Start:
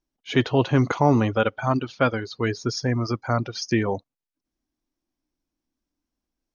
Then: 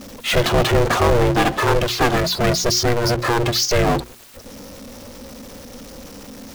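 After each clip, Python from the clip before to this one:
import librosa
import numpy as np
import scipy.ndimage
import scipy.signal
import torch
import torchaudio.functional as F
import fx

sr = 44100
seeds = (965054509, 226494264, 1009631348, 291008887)

y = fx.power_curve(x, sr, exponent=0.35)
y = y * np.sin(2.0 * np.pi * 240.0 * np.arange(len(y)) / sr)
y = fx.hum_notches(y, sr, base_hz=60, count=6)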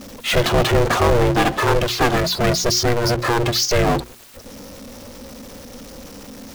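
y = x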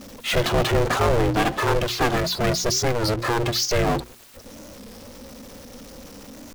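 y = fx.record_warp(x, sr, rpm=33.33, depth_cents=160.0)
y = F.gain(torch.from_numpy(y), -4.0).numpy()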